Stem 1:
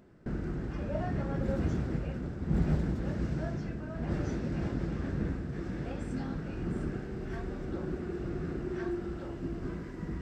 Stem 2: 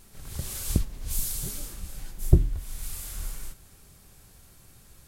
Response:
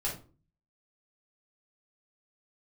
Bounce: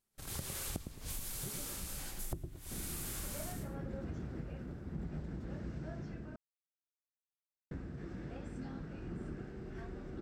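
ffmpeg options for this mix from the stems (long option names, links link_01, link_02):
-filter_complex "[0:a]adelay=2450,volume=-8dB,asplit=3[link_01][link_02][link_03];[link_01]atrim=end=6.36,asetpts=PTS-STARTPTS,afade=type=out:start_time=6.356:duration=0.004:curve=hsin[link_04];[link_02]atrim=start=6.36:end=7.71,asetpts=PTS-STARTPTS,volume=0[link_05];[link_03]atrim=start=7.71,asetpts=PTS-STARTPTS,afade=type=in:duration=0.004:curve=hsin[link_06];[link_04][link_05][link_06]concat=n=3:v=0:a=1[link_07];[1:a]agate=range=-32dB:threshold=-40dB:ratio=16:detection=peak,acrossover=split=3000[link_08][link_09];[link_09]acompressor=threshold=-39dB:ratio=4:attack=1:release=60[link_10];[link_08][link_10]amix=inputs=2:normalize=0,lowshelf=frequency=110:gain=-12,volume=2.5dB,asplit=2[link_11][link_12];[link_12]volume=-6.5dB,aecho=0:1:108|216|324:1|0.17|0.0289[link_13];[link_07][link_11][link_13]amix=inputs=3:normalize=0,acompressor=threshold=-37dB:ratio=16"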